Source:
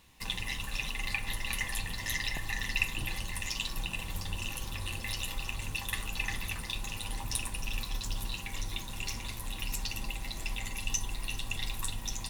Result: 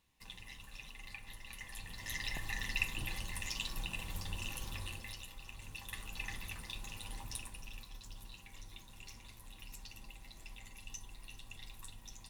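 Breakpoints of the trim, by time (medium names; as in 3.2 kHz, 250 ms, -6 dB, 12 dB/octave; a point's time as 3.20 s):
1.56 s -15.5 dB
2.34 s -5 dB
4.78 s -5 dB
5.32 s -15 dB
6.22 s -8.5 dB
7.19 s -8.5 dB
7.89 s -15.5 dB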